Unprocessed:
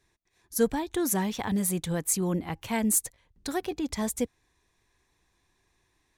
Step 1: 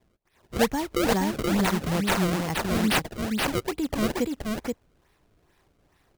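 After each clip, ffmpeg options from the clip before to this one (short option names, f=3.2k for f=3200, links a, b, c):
-filter_complex "[0:a]asplit=2[a][b];[b]acompressor=threshold=-35dB:ratio=6,volume=-1dB[c];[a][c]amix=inputs=2:normalize=0,acrusher=samples=29:mix=1:aa=0.000001:lfo=1:lforange=46.4:lforate=2.3,aecho=1:1:476:0.668"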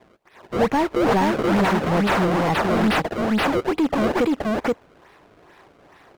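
-filter_complex "[0:a]asplit=2[a][b];[b]highpass=f=720:p=1,volume=28dB,asoftclip=type=tanh:threshold=-9.5dB[c];[a][c]amix=inputs=2:normalize=0,lowpass=f=1.2k:p=1,volume=-6dB"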